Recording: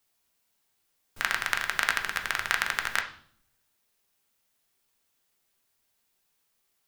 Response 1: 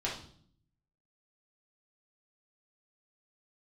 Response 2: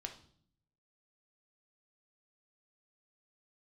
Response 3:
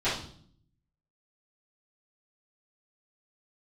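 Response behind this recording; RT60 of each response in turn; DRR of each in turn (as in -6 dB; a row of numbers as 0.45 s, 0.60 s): 2; 0.55 s, 0.55 s, 0.55 s; -5.5 dB, 3.5 dB, -15.0 dB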